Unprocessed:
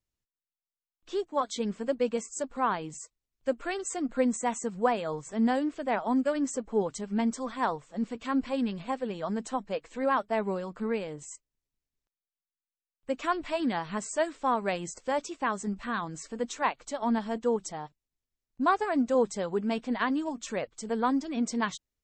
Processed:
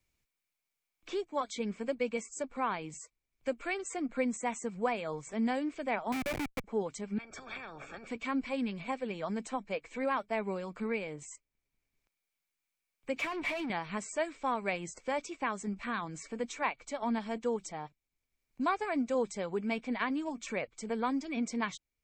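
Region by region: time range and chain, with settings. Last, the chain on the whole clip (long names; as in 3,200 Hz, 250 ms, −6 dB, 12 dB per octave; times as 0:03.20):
0:06.12–0:06.64: variable-slope delta modulation 16 kbit/s + mains-hum notches 50/100/150/200/250/300/350/400 Hz + comparator with hysteresis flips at −29.5 dBFS
0:07.18–0:08.07: downward compressor 10 to 1, threshold −39 dBFS + moving average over 44 samples + every bin compressed towards the loudest bin 10 to 1
0:13.16–0:13.70: parametric band 1,400 Hz −8 dB 0.31 octaves + downward compressor 10 to 1, threshold −34 dBFS + mid-hump overdrive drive 24 dB, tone 3,900 Hz, clips at −27 dBFS
whole clip: parametric band 2,300 Hz +13.5 dB 0.2 octaves; multiband upward and downward compressor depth 40%; level −5 dB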